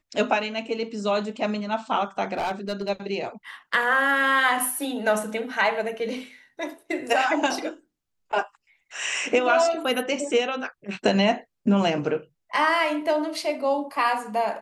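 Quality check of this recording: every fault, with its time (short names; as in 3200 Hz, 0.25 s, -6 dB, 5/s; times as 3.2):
2.33–2.9 clipped -23 dBFS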